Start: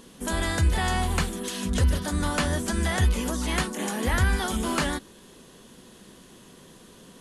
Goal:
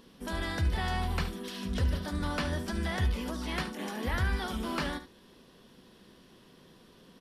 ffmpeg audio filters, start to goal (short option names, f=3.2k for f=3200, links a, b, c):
-filter_complex "[0:a]superequalizer=15b=0.282:16b=0.355,asplit=2[a][b];[b]aecho=0:1:72:0.251[c];[a][c]amix=inputs=2:normalize=0,volume=-7dB"